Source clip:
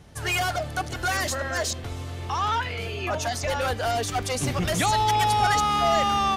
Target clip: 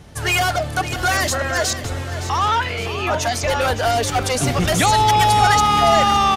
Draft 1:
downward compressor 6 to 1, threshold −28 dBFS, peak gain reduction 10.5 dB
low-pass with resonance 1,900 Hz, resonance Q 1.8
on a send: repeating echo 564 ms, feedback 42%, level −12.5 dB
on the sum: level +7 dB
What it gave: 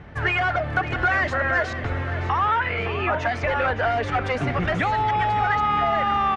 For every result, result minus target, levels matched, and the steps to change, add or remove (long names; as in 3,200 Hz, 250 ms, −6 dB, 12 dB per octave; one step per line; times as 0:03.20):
downward compressor: peak gain reduction +10.5 dB; 2,000 Hz band +4.0 dB
remove: downward compressor 6 to 1, threshold −28 dBFS, peak gain reduction 10.5 dB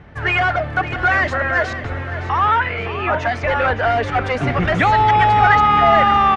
2,000 Hz band +3.0 dB
remove: low-pass with resonance 1,900 Hz, resonance Q 1.8